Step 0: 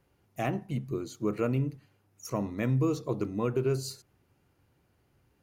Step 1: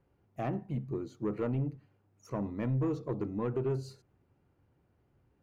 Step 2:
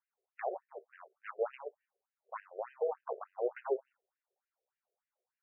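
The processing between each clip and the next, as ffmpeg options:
-af "lowpass=f=1.1k:p=1,asoftclip=type=tanh:threshold=-24dB,volume=-1dB"
-af "aeval=exprs='0.0562*(cos(1*acos(clip(val(0)/0.0562,-1,1)))-cos(1*PI/2))+0.0112*(cos(2*acos(clip(val(0)/0.0562,-1,1)))-cos(2*PI/2))+0.0158*(cos(3*acos(clip(val(0)/0.0562,-1,1)))-cos(3*PI/2))+0.00112*(cos(6*acos(clip(val(0)/0.0562,-1,1)))-cos(6*PI/2))':c=same,afftfilt=real='re*between(b*sr/1024,490*pow(2200/490,0.5+0.5*sin(2*PI*3.4*pts/sr))/1.41,490*pow(2200/490,0.5+0.5*sin(2*PI*3.4*pts/sr))*1.41)':imag='im*between(b*sr/1024,490*pow(2200/490,0.5+0.5*sin(2*PI*3.4*pts/sr))/1.41,490*pow(2200/490,0.5+0.5*sin(2*PI*3.4*pts/sr))*1.41)':win_size=1024:overlap=0.75,volume=7dB"

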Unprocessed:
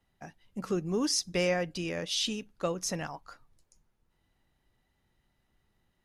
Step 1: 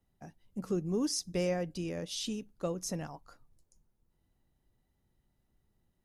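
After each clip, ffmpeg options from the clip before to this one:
-af "equalizer=f=2.2k:w=0.37:g=-10.5"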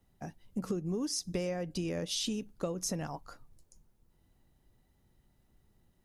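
-af "acompressor=threshold=-37dB:ratio=12,volume=6.5dB"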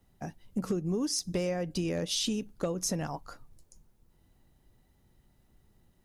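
-af "asoftclip=type=hard:threshold=-25.5dB,volume=3.5dB"

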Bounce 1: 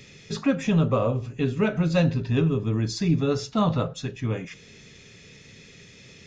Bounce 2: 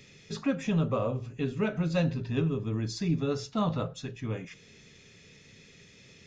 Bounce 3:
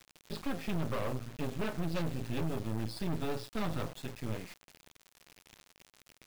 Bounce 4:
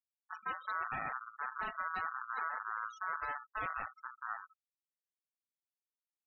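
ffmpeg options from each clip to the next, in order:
-af "bandreject=f=60:t=h:w=6,bandreject=f=120:t=h:w=6,volume=-6dB"
-af "aresample=11025,volume=26dB,asoftclip=hard,volume=-26dB,aresample=44100,acrusher=bits=5:dc=4:mix=0:aa=0.000001"
-af "aeval=exprs='val(0)*sin(2*PI*1300*n/s)':c=same,afftfilt=real='re*gte(hypot(re,im),0.0126)':imag='im*gte(hypot(re,im),0.0126)':win_size=1024:overlap=0.75,volume=-2.5dB"

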